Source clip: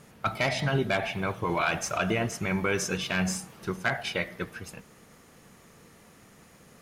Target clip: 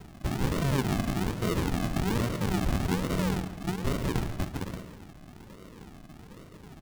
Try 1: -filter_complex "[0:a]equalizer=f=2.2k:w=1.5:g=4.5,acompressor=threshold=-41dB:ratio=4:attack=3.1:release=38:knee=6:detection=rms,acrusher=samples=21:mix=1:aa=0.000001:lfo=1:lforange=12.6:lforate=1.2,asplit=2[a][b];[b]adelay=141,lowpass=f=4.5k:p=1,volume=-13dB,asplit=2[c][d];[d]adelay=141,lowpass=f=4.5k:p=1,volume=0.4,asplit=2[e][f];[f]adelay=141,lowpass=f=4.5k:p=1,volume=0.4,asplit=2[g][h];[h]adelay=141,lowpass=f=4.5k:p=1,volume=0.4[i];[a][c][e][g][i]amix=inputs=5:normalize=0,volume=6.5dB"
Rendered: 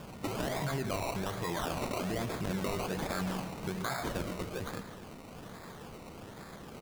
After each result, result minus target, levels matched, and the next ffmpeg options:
compressor: peak gain reduction +7 dB; decimation with a swept rate: distortion -10 dB
-filter_complex "[0:a]equalizer=f=2.2k:w=1.5:g=4.5,acompressor=threshold=-31.5dB:ratio=4:attack=3.1:release=38:knee=6:detection=rms,acrusher=samples=21:mix=1:aa=0.000001:lfo=1:lforange=12.6:lforate=1.2,asplit=2[a][b];[b]adelay=141,lowpass=f=4.5k:p=1,volume=-13dB,asplit=2[c][d];[d]adelay=141,lowpass=f=4.5k:p=1,volume=0.4,asplit=2[e][f];[f]adelay=141,lowpass=f=4.5k:p=1,volume=0.4,asplit=2[g][h];[h]adelay=141,lowpass=f=4.5k:p=1,volume=0.4[i];[a][c][e][g][i]amix=inputs=5:normalize=0,volume=6.5dB"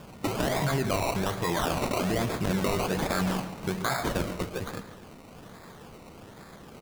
decimation with a swept rate: distortion -10 dB
-filter_complex "[0:a]equalizer=f=2.2k:w=1.5:g=4.5,acompressor=threshold=-31.5dB:ratio=4:attack=3.1:release=38:knee=6:detection=rms,acrusher=samples=74:mix=1:aa=0.000001:lfo=1:lforange=44.4:lforate=1.2,asplit=2[a][b];[b]adelay=141,lowpass=f=4.5k:p=1,volume=-13dB,asplit=2[c][d];[d]adelay=141,lowpass=f=4.5k:p=1,volume=0.4,asplit=2[e][f];[f]adelay=141,lowpass=f=4.5k:p=1,volume=0.4,asplit=2[g][h];[h]adelay=141,lowpass=f=4.5k:p=1,volume=0.4[i];[a][c][e][g][i]amix=inputs=5:normalize=0,volume=6.5dB"

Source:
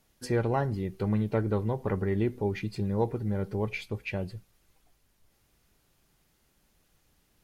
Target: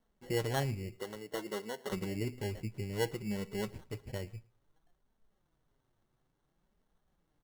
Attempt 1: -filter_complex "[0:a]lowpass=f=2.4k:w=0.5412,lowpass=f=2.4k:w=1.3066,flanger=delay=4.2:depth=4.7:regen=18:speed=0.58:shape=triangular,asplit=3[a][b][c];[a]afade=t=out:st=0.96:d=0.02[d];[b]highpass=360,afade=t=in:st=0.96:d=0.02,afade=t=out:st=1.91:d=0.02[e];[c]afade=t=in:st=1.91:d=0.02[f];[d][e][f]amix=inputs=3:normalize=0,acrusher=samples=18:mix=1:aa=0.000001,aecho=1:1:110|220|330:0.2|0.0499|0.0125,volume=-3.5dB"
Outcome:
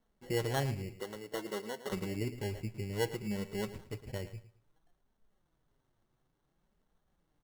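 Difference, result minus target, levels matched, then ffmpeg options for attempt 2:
echo-to-direct +11 dB
-filter_complex "[0:a]lowpass=f=2.4k:w=0.5412,lowpass=f=2.4k:w=1.3066,flanger=delay=4.2:depth=4.7:regen=18:speed=0.58:shape=triangular,asplit=3[a][b][c];[a]afade=t=out:st=0.96:d=0.02[d];[b]highpass=360,afade=t=in:st=0.96:d=0.02,afade=t=out:st=1.91:d=0.02[e];[c]afade=t=in:st=1.91:d=0.02[f];[d][e][f]amix=inputs=3:normalize=0,acrusher=samples=18:mix=1:aa=0.000001,aecho=1:1:110|220:0.0562|0.0141,volume=-3.5dB"

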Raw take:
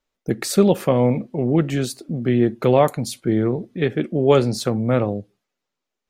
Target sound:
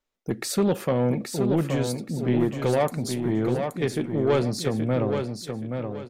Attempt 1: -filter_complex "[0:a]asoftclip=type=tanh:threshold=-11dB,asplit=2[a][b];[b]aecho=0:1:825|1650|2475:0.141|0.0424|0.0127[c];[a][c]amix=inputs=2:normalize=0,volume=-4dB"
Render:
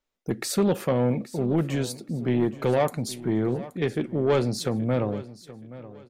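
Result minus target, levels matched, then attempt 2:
echo-to-direct -11 dB
-filter_complex "[0:a]asoftclip=type=tanh:threshold=-11dB,asplit=2[a][b];[b]aecho=0:1:825|1650|2475|3300:0.501|0.15|0.0451|0.0135[c];[a][c]amix=inputs=2:normalize=0,volume=-4dB"

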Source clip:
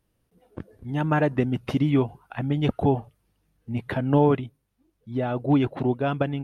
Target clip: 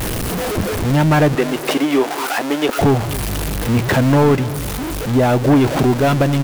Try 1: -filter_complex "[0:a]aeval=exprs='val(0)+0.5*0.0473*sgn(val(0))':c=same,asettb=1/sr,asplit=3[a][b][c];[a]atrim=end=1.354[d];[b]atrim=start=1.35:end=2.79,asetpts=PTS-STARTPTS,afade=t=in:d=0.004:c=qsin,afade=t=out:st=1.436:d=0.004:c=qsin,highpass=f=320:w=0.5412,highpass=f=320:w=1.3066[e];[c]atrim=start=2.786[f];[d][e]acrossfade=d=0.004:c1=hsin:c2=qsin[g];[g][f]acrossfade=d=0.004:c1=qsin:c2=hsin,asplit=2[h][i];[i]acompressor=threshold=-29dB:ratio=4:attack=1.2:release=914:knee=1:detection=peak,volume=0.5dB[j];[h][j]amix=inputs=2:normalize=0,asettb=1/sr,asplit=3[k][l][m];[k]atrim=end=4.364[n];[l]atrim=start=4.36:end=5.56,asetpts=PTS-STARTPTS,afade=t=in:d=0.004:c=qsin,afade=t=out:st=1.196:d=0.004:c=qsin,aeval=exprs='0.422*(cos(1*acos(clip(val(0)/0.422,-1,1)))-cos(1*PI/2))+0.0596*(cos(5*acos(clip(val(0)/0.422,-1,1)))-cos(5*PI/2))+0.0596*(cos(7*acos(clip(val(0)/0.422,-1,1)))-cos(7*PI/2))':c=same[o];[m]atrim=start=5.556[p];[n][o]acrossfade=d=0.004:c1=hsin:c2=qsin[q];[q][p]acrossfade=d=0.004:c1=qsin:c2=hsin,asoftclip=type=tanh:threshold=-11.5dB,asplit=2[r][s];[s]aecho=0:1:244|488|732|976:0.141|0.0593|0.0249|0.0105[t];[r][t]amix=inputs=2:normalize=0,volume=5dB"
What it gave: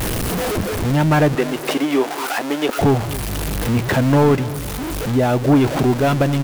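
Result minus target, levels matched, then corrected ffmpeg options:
compressor: peak gain reduction +7.5 dB
-filter_complex "[0:a]aeval=exprs='val(0)+0.5*0.0473*sgn(val(0))':c=same,asettb=1/sr,asplit=3[a][b][c];[a]atrim=end=1.354[d];[b]atrim=start=1.35:end=2.79,asetpts=PTS-STARTPTS,afade=t=in:d=0.004:c=qsin,afade=t=out:st=1.436:d=0.004:c=qsin,highpass=f=320:w=0.5412,highpass=f=320:w=1.3066[e];[c]atrim=start=2.786[f];[d][e]acrossfade=d=0.004:c1=hsin:c2=qsin[g];[g][f]acrossfade=d=0.004:c1=qsin:c2=hsin,asplit=2[h][i];[i]acompressor=threshold=-19dB:ratio=4:attack=1.2:release=914:knee=1:detection=peak,volume=0.5dB[j];[h][j]amix=inputs=2:normalize=0,asettb=1/sr,asplit=3[k][l][m];[k]atrim=end=4.364[n];[l]atrim=start=4.36:end=5.56,asetpts=PTS-STARTPTS,afade=t=in:d=0.004:c=qsin,afade=t=out:st=1.196:d=0.004:c=qsin,aeval=exprs='0.422*(cos(1*acos(clip(val(0)/0.422,-1,1)))-cos(1*PI/2))+0.0596*(cos(5*acos(clip(val(0)/0.422,-1,1)))-cos(5*PI/2))+0.0596*(cos(7*acos(clip(val(0)/0.422,-1,1)))-cos(7*PI/2))':c=same[o];[m]atrim=start=5.556[p];[n][o]acrossfade=d=0.004:c1=hsin:c2=qsin[q];[q][p]acrossfade=d=0.004:c1=qsin:c2=hsin,asoftclip=type=tanh:threshold=-11.5dB,asplit=2[r][s];[s]aecho=0:1:244|488|732|976:0.141|0.0593|0.0249|0.0105[t];[r][t]amix=inputs=2:normalize=0,volume=5dB"

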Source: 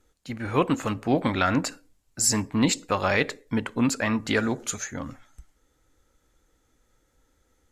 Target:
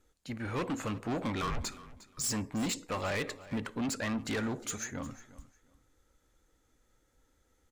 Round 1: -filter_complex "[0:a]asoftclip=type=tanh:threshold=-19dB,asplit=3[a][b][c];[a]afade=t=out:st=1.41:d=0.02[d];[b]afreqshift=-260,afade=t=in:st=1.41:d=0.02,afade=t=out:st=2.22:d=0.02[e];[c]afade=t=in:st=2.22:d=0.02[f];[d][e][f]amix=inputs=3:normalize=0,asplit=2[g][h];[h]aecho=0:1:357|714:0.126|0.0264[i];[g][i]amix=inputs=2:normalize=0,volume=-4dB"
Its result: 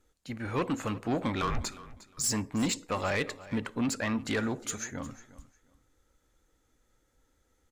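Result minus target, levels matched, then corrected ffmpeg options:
soft clip: distortion -5 dB
-filter_complex "[0:a]asoftclip=type=tanh:threshold=-25.5dB,asplit=3[a][b][c];[a]afade=t=out:st=1.41:d=0.02[d];[b]afreqshift=-260,afade=t=in:st=1.41:d=0.02,afade=t=out:st=2.22:d=0.02[e];[c]afade=t=in:st=2.22:d=0.02[f];[d][e][f]amix=inputs=3:normalize=0,asplit=2[g][h];[h]aecho=0:1:357|714:0.126|0.0264[i];[g][i]amix=inputs=2:normalize=0,volume=-4dB"

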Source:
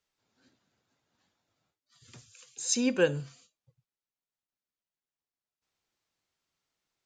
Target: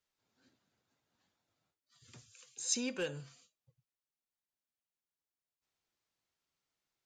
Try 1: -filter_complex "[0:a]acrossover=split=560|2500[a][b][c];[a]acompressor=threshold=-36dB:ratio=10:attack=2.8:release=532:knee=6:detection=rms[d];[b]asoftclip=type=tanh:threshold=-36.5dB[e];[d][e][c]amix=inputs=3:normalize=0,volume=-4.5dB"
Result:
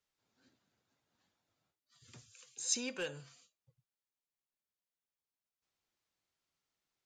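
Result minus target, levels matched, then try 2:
compressor: peak gain reduction +5.5 dB
-filter_complex "[0:a]acrossover=split=560|2500[a][b][c];[a]acompressor=threshold=-30dB:ratio=10:attack=2.8:release=532:knee=6:detection=rms[d];[b]asoftclip=type=tanh:threshold=-36.5dB[e];[d][e][c]amix=inputs=3:normalize=0,volume=-4.5dB"

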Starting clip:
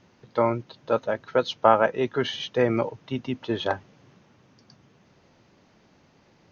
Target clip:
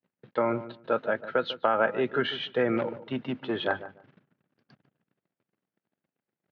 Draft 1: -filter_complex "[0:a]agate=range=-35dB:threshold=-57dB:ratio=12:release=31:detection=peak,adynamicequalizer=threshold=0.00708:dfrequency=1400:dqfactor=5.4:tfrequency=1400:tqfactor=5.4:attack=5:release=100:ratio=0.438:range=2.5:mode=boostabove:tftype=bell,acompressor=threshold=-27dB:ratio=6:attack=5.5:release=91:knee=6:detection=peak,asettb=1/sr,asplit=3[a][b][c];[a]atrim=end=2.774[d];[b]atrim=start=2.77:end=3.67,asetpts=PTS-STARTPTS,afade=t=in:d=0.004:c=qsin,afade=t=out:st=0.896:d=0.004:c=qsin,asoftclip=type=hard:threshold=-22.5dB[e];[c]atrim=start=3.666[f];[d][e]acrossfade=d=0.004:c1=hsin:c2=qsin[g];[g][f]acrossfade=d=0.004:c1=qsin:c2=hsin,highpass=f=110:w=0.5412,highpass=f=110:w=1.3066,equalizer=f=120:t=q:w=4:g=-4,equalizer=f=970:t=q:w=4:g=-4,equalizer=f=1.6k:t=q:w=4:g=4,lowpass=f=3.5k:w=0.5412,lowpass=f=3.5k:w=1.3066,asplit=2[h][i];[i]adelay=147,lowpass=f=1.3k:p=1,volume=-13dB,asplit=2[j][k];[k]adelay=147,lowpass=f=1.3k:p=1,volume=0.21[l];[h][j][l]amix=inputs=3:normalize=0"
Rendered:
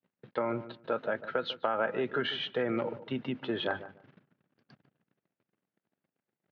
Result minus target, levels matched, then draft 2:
compressor: peak gain reduction +6.5 dB
-filter_complex "[0:a]agate=range=-35dB:threshold=-57dB:ratio=12:release=31:detection=peak,adynamicequalizer=threshold=0.00708:dfrequency=1400:dqfactor=5.4:tfrequency=1400:tqfactor=5.4:attack=5:release=100:ratio=0.438:range=2.5:mode=boostabove:tftype=bell,acompressor=threshold=-19.5dB:ratio=6:attack=5.5:release=91:knee=6:detection=peak,asettb=1/sr,asplit=3[a][b][c];[a]atrim=end=2.774[d];[b]atrim=start=2.77:end=3.67,asetpts=PTS-STARTPTS,afade=t=in:d=0.004:c=qsin,afade=t=out:st=0.896:d=0.004:c=qsin,asoftclip=type=hard:threshold=-22.5dB[e];[c]atrim=start=3.666[f];[d][e]acrossfade=d=0.004:c1=hsin:c2=qsin[g];[g][f]acrossfade=d=0.004:c1=qsin:c2=hsin,highpass=f=110:w=0.5412,highpass=f=110:w=1.3066,equalizer=f=120:t=q:w=4:g=-4,equalizer=f=970:t=q:w=4:g=-4,equalizer=f=1.6k:t=q:w=4:g=4,lowpass=f=3.5k:w=0.5412,lowpass=f=3.5k:w=1.3066,asplit=2[h][i];[i]adelay=147,lowpass=f=1.3k:p=1,volume=-13dB,asplit=2[j][k];[k]adelay=147,lowpass=f=1.3k:p=1,volume=0.21[l];[h][j][l]amix=inputs=3:normalize=0"

